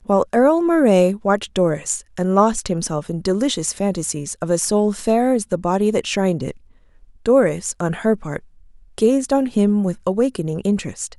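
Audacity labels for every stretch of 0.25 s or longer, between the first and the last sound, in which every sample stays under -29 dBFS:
6.510000	7.260000	silence
8.370000	8.980000	silence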